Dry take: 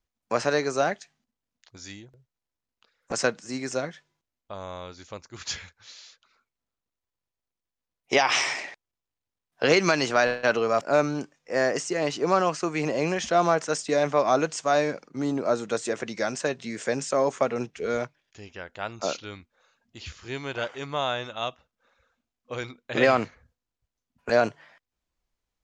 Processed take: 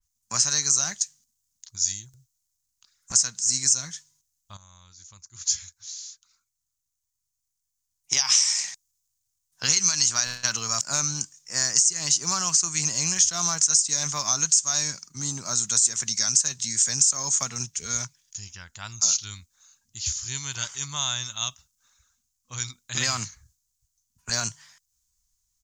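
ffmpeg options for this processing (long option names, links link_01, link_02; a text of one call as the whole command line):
ffmpeg -i in.wav -filter_complex "[0:a]asplit=2[link_01][link_02];[link_01]atrim=end=4.57,asetpts=PTS-STARTPTS,afade=type=out:start_time=4.566:duration=0.004:curve=hsin:silence=0.199526[link_03];[link_02]atrim=start=4.57,asetpts=PTS-STARTPTS,afade=type=in:duration=3.59:silence=0.199526[link_04];[link_03][link_04]concat=n=2:v=0:a=1,firequalizer=gain_entry='entry(110,0);entry(280,-18);entry(490,-27);entry(980,-9);entry(2500,-9);entry(6500,15);entry(9800,9)':delay=0.05:min_phase=1,acompressor=threshold=-28dB:ratio=6,adynamicequalizer=threshold=0.00447:dfrequency=2900:dqfactor=0.7:tfrequency=2900:tqfactor=0.7:attack=5:release=100:ratio=0.375:range=3.5:mode=boostabove:tftype=highshelf,volume=4.5dB" out.wav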